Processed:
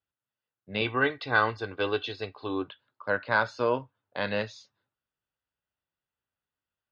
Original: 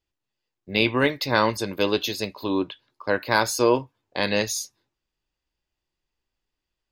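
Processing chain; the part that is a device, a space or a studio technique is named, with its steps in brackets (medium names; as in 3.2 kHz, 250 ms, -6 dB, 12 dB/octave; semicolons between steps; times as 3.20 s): guitar cabinet (cabinet simulation 90–3700 Hz, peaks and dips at 100 Hz +5 dB, 340 Hz -8 dB, 590 Hz +3 dB, 1.4 kHz +9 dB, 2.3 kHz -4 dB); 0.81–2.68 s: comb 2.6 ms, depth 64%; trim -6.5 dB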